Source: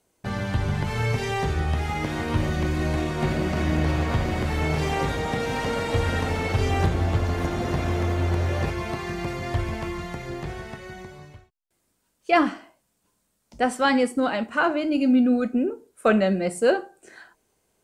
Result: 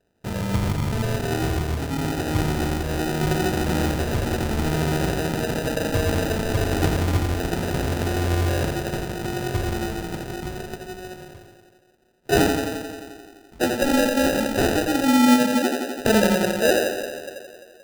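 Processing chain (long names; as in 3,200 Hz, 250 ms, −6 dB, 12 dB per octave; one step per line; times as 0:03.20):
tape delay 86 ms, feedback 82%, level −3 dB, low-pass 1,800 Hz
decimation without filtering 40×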